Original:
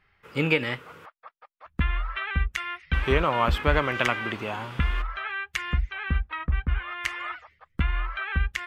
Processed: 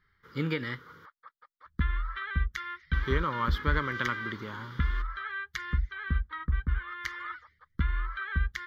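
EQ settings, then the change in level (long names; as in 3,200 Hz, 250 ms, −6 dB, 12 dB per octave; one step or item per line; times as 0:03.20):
phaser with its sweep stopped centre 2,600 Hz, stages 6
−3.0 dB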